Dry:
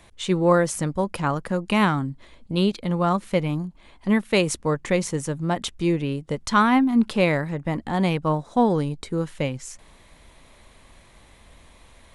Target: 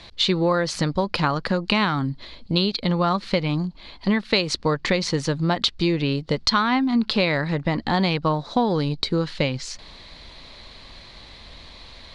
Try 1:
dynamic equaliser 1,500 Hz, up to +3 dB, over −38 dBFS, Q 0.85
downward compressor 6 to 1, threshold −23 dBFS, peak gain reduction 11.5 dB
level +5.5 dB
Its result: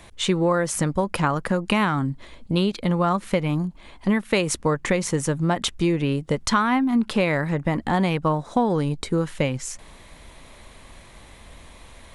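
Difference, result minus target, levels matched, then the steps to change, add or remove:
4,000 Hz band −6.5 dB
add after dynamic equaliser: low-pass with resonance 4,400 Hz, resonance Q 5.7

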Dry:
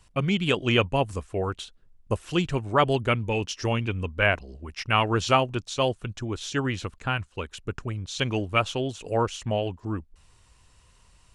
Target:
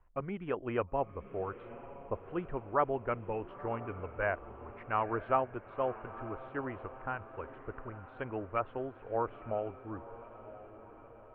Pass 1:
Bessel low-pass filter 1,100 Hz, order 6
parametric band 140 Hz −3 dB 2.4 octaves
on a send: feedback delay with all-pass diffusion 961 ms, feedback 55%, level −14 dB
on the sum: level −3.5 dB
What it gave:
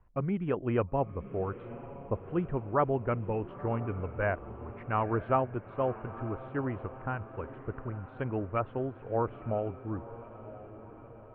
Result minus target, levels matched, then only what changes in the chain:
125 Hz band +6.5 dB
change: parametric band 140 Hz −14 dB 2.4 octaves

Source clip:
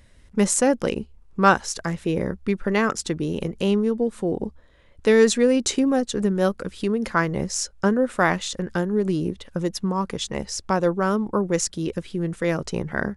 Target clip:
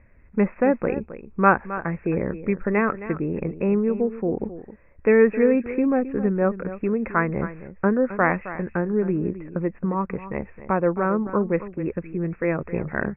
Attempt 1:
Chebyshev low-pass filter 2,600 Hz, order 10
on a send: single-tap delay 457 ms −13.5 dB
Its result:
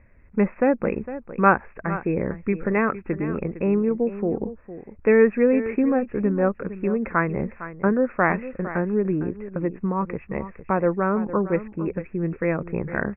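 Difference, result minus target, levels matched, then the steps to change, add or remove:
echo 191 ms late
change: single-tap delay 266 ms −13.5 dB

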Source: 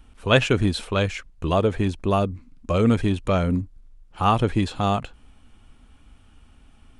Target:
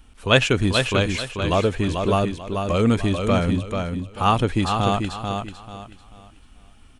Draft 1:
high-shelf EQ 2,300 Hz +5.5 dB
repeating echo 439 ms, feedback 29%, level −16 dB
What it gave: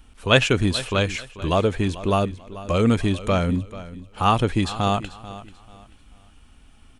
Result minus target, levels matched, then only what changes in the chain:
echo-to-direct −10.5 dB
change: repeating echo 439 ms, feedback 29%, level −5.5 dB

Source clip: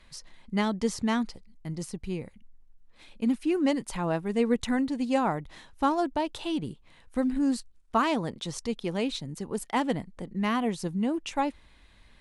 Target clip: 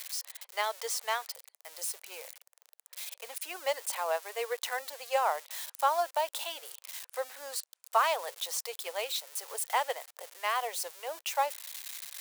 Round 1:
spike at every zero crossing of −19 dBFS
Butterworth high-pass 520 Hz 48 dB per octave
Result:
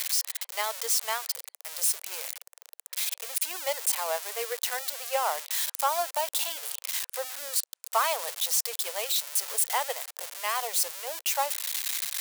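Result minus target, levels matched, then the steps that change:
spike at every zero crossing: distortion +11 dB
change: spike at every zero crossing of −30.5 dBFS

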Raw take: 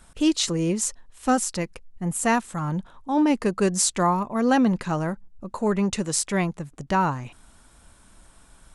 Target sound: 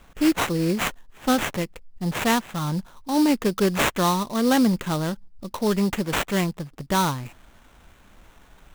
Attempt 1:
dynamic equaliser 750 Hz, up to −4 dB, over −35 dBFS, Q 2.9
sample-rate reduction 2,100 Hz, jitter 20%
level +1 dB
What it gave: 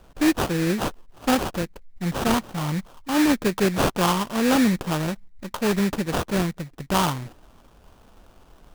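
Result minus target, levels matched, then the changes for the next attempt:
sample-rate reduction: distortion +4 dB
change: sample-rate reduction 4,900 Hz, jitter 20%

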